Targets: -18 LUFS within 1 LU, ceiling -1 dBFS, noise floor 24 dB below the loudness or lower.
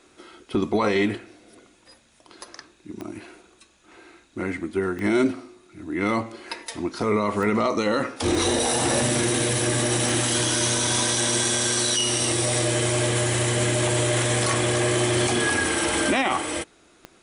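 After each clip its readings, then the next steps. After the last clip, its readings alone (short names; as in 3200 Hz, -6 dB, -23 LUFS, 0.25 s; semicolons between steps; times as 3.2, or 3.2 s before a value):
clicks 6; loudness -22.5 LUFS; peak -9.0 dBFS; loudness target -18.0 LUFS
-> de-click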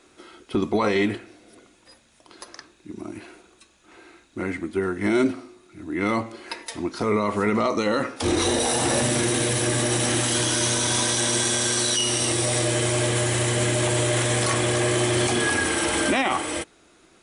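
clicks 0; loudness -22.5 LUFS; peak -9.0 dBFS; loudness target -18.0 LUFS
-> gain +4.5 dB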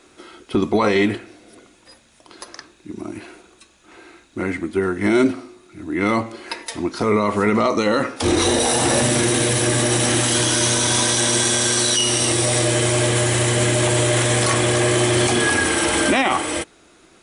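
loudness -18.0 LUFS; peak -4.0 dBFS; noise floor -53 dBFS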